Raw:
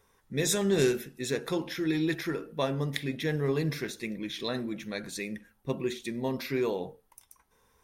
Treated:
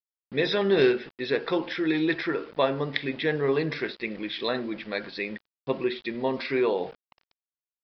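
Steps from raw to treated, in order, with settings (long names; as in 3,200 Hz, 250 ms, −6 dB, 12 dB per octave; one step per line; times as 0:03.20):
bass and treble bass −12 dB, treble −7 dB
centre clipping without the shift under −50.5 dBFS
downsampling to 11,025 Hz
level +7 dB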